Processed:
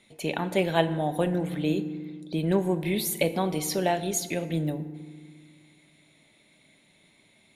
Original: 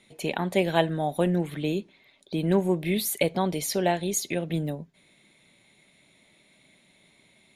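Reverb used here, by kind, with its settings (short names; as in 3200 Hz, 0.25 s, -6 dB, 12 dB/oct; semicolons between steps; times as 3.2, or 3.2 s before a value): FDN reverb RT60 1.6 s, low-frequency decay 1.45×, high-frequency decay 0.5×, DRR 10.5 dB; gain -1 dB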